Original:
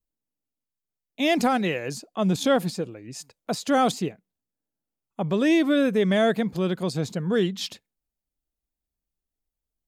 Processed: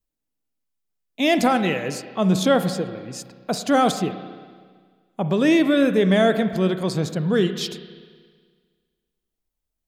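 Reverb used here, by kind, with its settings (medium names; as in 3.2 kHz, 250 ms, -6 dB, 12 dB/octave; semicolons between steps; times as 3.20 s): spring tank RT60 1.7 s, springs 32/53 ms, chirp 25 ms, DRR 9.5 dB; trim +3 dB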